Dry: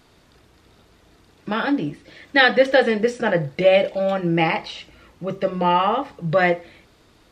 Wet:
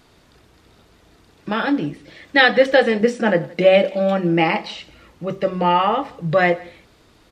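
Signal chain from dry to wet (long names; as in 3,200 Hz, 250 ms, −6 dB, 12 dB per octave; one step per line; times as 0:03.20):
0:03.01–0:04.75: low shelf with overshoot 160 Hz −7 dB, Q 3
single-tap delay 171 ms −24 dB
level +1.5 dB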